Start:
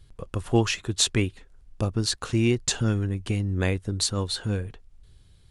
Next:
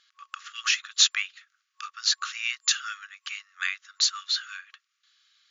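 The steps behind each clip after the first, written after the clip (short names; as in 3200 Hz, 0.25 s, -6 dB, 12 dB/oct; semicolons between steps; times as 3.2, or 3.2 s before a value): FFT band-pass 1100–7200 Hz; gain +4.5 dB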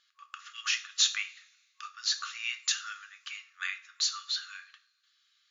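reverb, pre-delay 3 ms, DRR 6 dB; gain -6.5 dB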